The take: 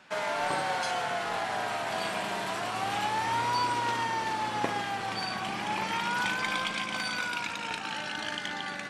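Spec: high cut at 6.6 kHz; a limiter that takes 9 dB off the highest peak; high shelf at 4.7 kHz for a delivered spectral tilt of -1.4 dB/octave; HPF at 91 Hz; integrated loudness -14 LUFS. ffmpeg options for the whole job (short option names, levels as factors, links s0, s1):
-af "highpass=91,lowpass=6600,highshelf=f=4700:g=-9,volume=8.91,alimiter=limit=0.596:level=0:latency=1"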